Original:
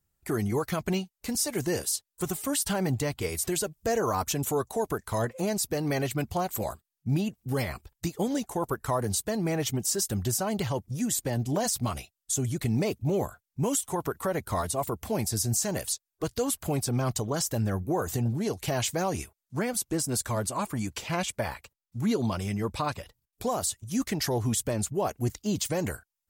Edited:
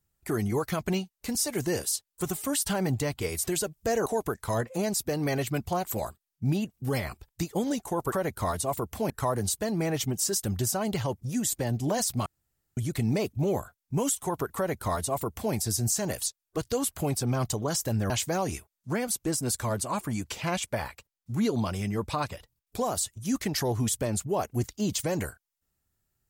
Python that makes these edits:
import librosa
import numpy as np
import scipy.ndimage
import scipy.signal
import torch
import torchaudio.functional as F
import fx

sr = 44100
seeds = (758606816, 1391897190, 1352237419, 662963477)

y = fx.edit(x, sr, fx.cut(start_s=4.06, length_s=0.64),
    fx.room_tone_fill(start_s=11.92, length_s=0.51),
    fx.duplicate(start_s=14.22, length_s=0.98, to_s=8.76),
    fx.cut(start_s=17.76, length_s=1.0), tone=tone)